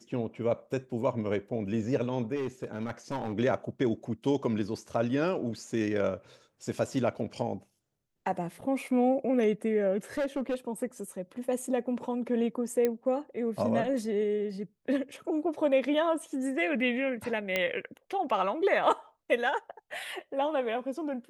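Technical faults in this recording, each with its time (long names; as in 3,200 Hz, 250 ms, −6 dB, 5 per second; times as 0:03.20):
0:02.35–0:03.33: clipping −28 dBFS
0:10.17–0:10.55: clipping −26 dBFS
0:12.85: click −15 dBFS
0:17.56: click −14 dBFS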